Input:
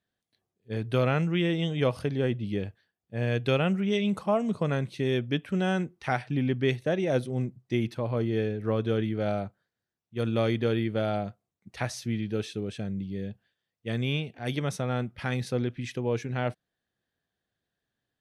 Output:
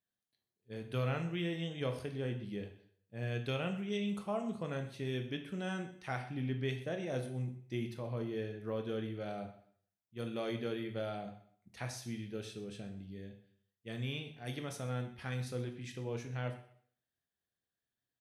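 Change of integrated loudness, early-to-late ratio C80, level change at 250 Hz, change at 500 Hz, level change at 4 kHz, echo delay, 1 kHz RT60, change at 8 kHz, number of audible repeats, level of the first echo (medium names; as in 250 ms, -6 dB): -10.5 dB, 12.5 dB, -11.0 dB, -11.0 dB, -9.0 dB, 125 ms, 0.60 s, -6.5 dB, 2, -19.0 dB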